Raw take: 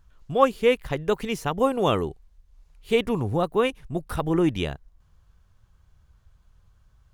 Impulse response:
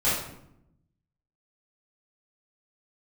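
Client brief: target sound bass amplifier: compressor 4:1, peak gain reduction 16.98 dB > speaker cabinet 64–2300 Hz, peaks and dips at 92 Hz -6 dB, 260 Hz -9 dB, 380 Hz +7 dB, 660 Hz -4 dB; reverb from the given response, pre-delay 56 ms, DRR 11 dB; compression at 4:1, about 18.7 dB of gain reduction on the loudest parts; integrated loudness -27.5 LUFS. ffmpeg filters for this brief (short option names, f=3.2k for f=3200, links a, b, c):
-filter_complex "[0:a]acompressor=threshold=-36dB:ratio=4,asplit=2[a][b];[1:a]atrim=start_sample=2205,adelay=56[c];[b][c]afir=irnorm=-1:irlink=0,volume=-24.5dB[d];[a][d]amix=inputs=2:normalize=0,acompressor=threshold=-50dB:ratio=4,highpass=f=64:w=0.5412,highpass=f=64:w=1.3066,equalizer=f=92:t=q:w=4:g=-6,equalizer=f=260:t=q:w=4:g=-9,equalizer=f=380:t=q:w=4:g=7,equalizer=f=660:t=q:w=4:g=-4,lowpass=f=2.3k:w=0.5412,lowpass=f=2.3k:w=1.3066,volume=24.5dB"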